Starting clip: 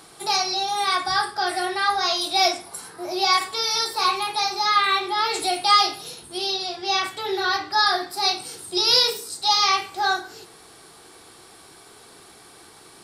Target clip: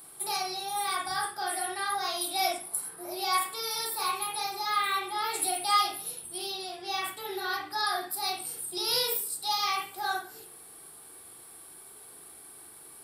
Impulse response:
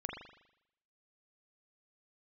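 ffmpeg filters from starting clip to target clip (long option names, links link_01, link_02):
-filter_complex "[0:a]aexciter=amount=9.8:drive=3.4:freq=8800[link_01];[1:a]atrim=start_sample=2205,atrim=end_sample=3528[link_02];[link_01][link_02]afir=irnorm=-1:irlink=0,volume=-8dB"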